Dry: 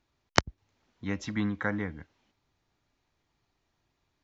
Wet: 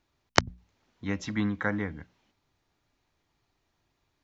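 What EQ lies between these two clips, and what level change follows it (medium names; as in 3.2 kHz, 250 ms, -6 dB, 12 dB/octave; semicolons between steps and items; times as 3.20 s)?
hum notches 60/120/180/240 Hz; +1.5 dB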